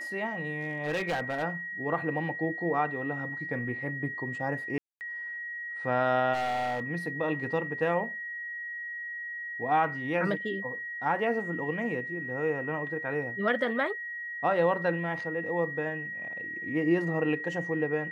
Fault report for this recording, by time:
whine 1.9 kHz -35 dBFS
0.61–1.44 s: clipped -26 dBFS
4.78–5.01 s: dropout 229 ms
6.33–6.83 s: clipped -27 dBFS

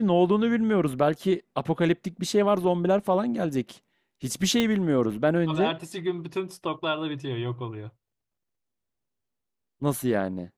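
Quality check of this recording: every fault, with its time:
4.60 s: pop -10 dBFS

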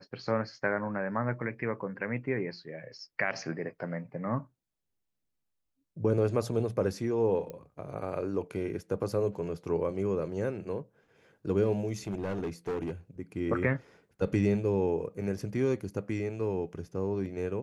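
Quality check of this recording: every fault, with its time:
7.50 s: pop -27 dBFS
12.07–12.92 s: clipped -29 dBFS

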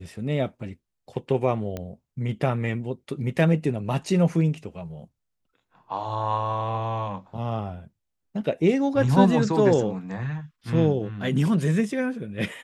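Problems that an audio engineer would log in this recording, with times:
1.77 s: pop -18 dBFS

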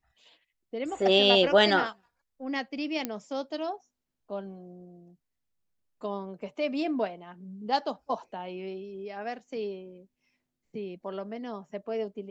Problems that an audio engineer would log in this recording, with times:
3.05 s: pop -15 dBFS

